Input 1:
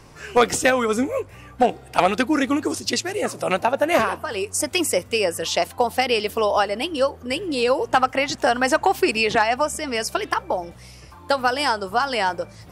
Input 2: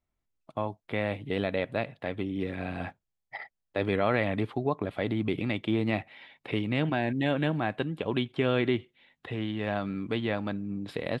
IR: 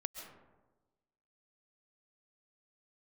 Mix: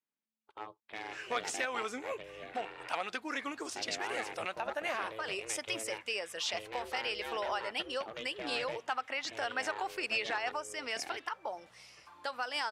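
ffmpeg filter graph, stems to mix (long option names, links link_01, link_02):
-filter_complex "[0:a]alimiter=limit=-14.5dB:level=0:latency=1:release=284,adelay=950,volume=-6.5dB[link_01];[1:a]aeval=exprs='clip(val(0),-1,0.0794)':channel_layout=same,aeval=exprs='val(0)*sin(2*PI*220*n/s)':channel_layout=same,volume=-3.5dB[link_02];[link_01][link_02]amix=inputs=2:normalize=0,bandpass=frequency=2400:width_type=q:width=0.51:csg=0"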